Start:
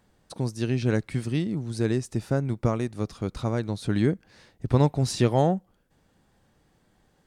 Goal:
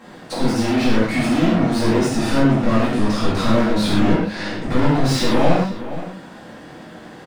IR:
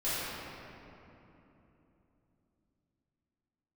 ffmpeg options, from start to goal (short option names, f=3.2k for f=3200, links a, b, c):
-filter_complex "[0:a]equalizer=f=220:t=o:w=1.2:g=10,alimiter=limit=-14dB:level=0:latency=1,asplit=2[a][b];[b]highpass=f=720:p=1,volume=33dB,asoftclip=type=tanh:threshold=-14dB[c];[a][c]amix=inputs=2:normalize=0,lowpass=f=2.6k:p=1,volume=-6dB,asplit=2[d][e];[e]adelay=472.3,volume=-13dB,highshelf=f=4k:g=-10.6[f];[d][f]amix=inputs=2:normalize=0[g];[1:a]atrim=start_sample=2205,atrim=end_sample=6615[h];[g][h]afir=irnorm=-1:irlink=0,volume=-2.5dB"